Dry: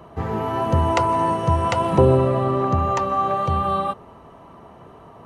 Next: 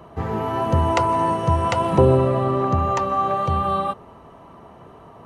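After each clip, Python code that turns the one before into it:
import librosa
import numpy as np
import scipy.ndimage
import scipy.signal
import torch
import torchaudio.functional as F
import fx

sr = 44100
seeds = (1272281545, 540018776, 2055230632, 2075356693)

y = x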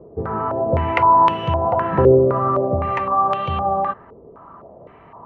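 y = fx.filter_held_lowpass(x, sr, hz=3.9, low_hz=450.0, high_hz=2900.0)
y = y * 10.0 ** (-2.5 / 20.0)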